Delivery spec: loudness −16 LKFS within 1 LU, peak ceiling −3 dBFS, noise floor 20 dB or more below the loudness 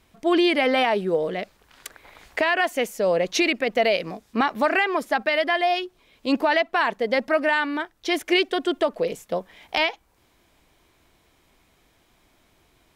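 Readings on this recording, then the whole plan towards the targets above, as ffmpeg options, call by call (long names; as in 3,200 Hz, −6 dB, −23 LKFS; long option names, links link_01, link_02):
integrated loudness −23.0 LKFS; sample peak −10.5 dBFS; target loudness −16.0 LKFS
→ -af "volume=7dB"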